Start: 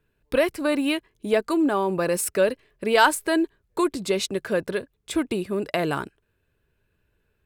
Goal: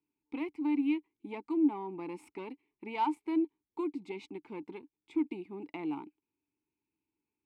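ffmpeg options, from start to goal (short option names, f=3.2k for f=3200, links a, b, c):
-filter_complex "[0:a]aeval=exprs='0.631*(cos(1*acos(clip(val(0)/0.631,-1,1)))-cos(1*PI/2))+0.0282*(cos(8*acos(clip(val(0)/0.631,-1,1)))-cos(8*PI/2))':c=same,asplit=3[a][b][c];[a]bandpass=f=300:t=q:w=8,volume=0dB[d];[b]bandpass=f=870:t=q:w=8,volume=-6dB[e];[c]bandpass=f=2.24k:t=q:w=8,volume=-9dB[f];[d][e][f]amix=inputs=3:normalize=0,volume=-2.5dB"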